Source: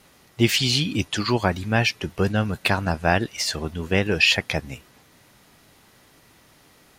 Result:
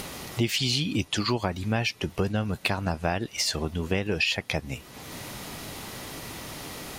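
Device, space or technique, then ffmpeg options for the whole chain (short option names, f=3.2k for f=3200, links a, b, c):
upward and downward compression: -af "acompressor=mode=upward:threshold=-23dB:ratio=2.5,acompressor=threshold=-22dB:ratio=5,equalizer=f=1.6k:w=2.7:g=-4"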